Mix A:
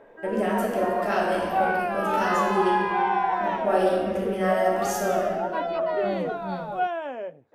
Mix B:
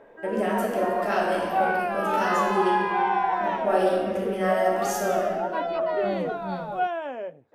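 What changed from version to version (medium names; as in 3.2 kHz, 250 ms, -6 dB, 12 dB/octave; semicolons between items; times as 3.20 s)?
first voice: add bass shelf 77 Hz -11 dB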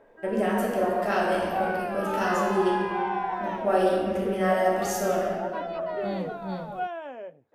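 first voice: add bass shelf 77 Hz +11 dB; background -5.5 dB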